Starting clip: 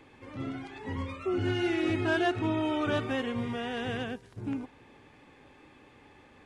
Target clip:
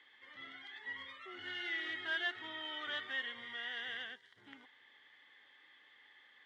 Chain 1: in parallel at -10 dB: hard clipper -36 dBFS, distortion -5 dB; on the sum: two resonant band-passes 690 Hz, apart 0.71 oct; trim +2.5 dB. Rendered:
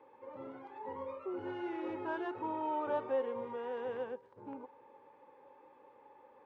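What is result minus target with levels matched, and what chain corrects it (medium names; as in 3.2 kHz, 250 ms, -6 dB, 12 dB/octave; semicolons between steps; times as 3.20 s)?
500 Hz band +16.5 dB
in parallel at -10 dB: hard clipper -36 dBFS, distortion -5 dB; on the sum: two resonant band-passes 2.5 kHz, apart 0.71 oct; trim +2.5 dB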